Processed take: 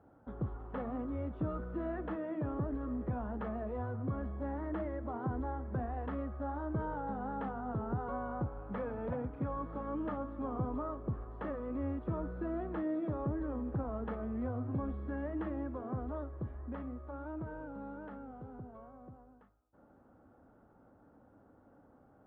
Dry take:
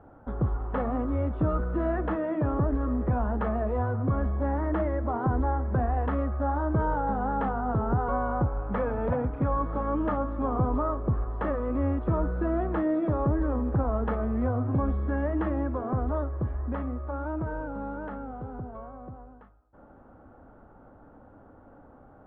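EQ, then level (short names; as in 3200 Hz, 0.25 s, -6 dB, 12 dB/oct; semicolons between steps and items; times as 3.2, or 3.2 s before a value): HPF 150 Hz 6 dB/oct; bell 1000 Hz -6 dB 2.8 oct; -5.5 dB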